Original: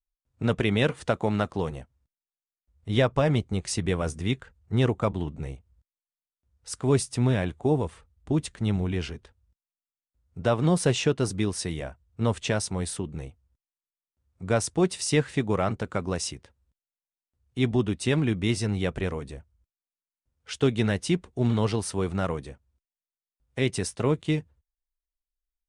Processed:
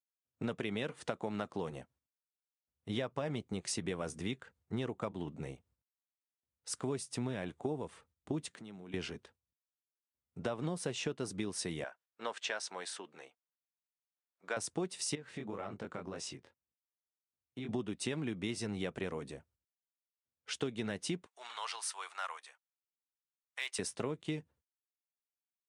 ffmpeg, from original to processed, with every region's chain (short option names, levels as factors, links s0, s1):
-filter_complex "[0:a]asettb=1/sr,asplit=3[s0][s1][s2];[s0]atrim=end=8.504[s3];[s1]atrim=start=8.5:end=8.94,asetpts=PTS-STARTPTS,afade=t=in:d=0.004:c=qsin,afade=t=out:st=0.436:d=0.004:c=qsin,highpass=170,acompressor=threshold=0.00708:ratio=4:attack=3.2:release=140:knee=1:detection=peak[s4];[s2]atrim=start=8.936[s5];[s3][s4]acrossfade=d=0.004:c1=hsin:c2=qsin[s6];[s6][s5]acrossfade=d=0.004:c1=qsin:c2=hsin,asettb=1/sr,asplit=3[s7][s8][s9];[s7]atrim=end=11.844[s10];[s8]atrim=start=11.84:end=14.57,asetpts=PTS-STARTPTS,afade=t=in:d=0.004:c=qsin,afade=t=out:st=2.726:d=0.004:c=qsin,highpass=680,lowpass=6300,equalizer=f=1600:t=o:w=0.25:g=5.5[s11];[s9]atrim=start=14.566[s12];[s10][s11]acrossfade=d=0.004:c1=hsin:c2=qsin[s13];[s13][s12]acrossfade=d=0.004:c1=qsin:c2=hsin,asettb=1/sr,asplit=3[s14][s15][s16];[s14]atrim=end=15.154[s17];[s15]atrim=start=15.15:end=17.69,asetpts=PTS-STARTPTS,afade=t=in:d=0.004:c=qsin,afade=t=out:st=2.536:d=0.004:c=qsin,lowpass=f=4000:p=1,flanger=delay=19:depth=4.7:speed=1.9,acompressor=threshold=0.0251:ratio=10:attack=3.2:release=140:knee=1:detection=peak[s18];[s16]atrim=start=17.686[s19];[s17][s18]acrossfade=d=0.004:c1=hsin:c2=qsin[s20];[s20][s19]acrossfade=d=0.004:c1=qsin:c2=hsin,asettb=1/sr,asplit=3[s21][s22][s23];[s21]atrim=end=21.264[s24];[s22]atrim=start=21.26:end=23.79,asetpts=PTS-STARTPTS,afade=t=in:d=0.004:c=qsin,afade=t=out:st=2.526:d=0.004:c=qsin,highpass=f=940:w=0.5412,highpass=f=940:w=1.3066,volume=11.9,asoftclip=hard,volume=0.0841[s25];[s23]atrim=start=23.786[s26];[s24][s25]acrossfade=d=0.004:c1=hsin:c2=qsin[s27];[s27][s26]acrossfade=d=0.004:c1=qsin:c2=hsin,agate=range=0.316:threshold=0.00126:ratio=16:detection=peak,highpass=170,acompressor=threshold=0.0316:ratio=6,volume=0.668"